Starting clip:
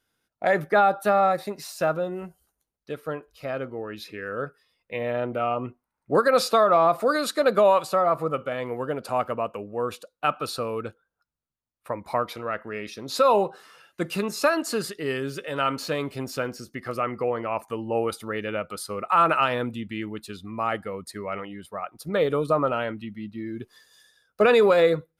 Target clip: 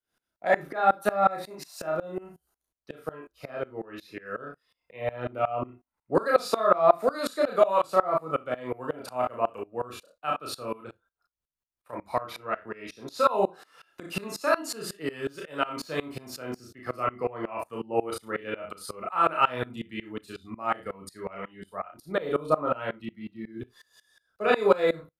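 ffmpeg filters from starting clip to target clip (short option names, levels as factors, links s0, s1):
-filter_complex "[0:a]acrossover=split=200|1300|2000[s0][s1][s2][s3];[s1]crystalizer=i=6.5:c=0[s4];[s0][s4][s2][s3]amix=inputs=4:normalize=0,asplit=3[s5][s6][s7];[s5]afade=t=out:st=10.76:d=0.02[s8];[s6]acompressor=threshold=0.0282:ratio=6,afade=t=in:st=10.76:d=0.02,afade=t=out:st=11.92:d=0.02[s9];[s7]afade=t=in:st=11.92:d=0.02[s10];[s8][s9][s10]amix=inputs=3:normalize=0,asplit=2[s11][s12];[s12]adelay=35,volume=0.447[s13];[s11][s13]amix=inputs=2:normalize=0,aecho=1:1:32|56:0.631|0.2,aeval=exprs='val(0)*pow(10,-23*if(lt(mod(-5.5*n/s,1),2*abs(-5.5)/1000),1-mod(-5.5*n/s,1)/(2*abs(-5.5)/1000),(mod(-5.5*n/s,1)-2*abs(-5.5)/1000)/(1-2*abs(-5.5)/1000))/20)':c=same"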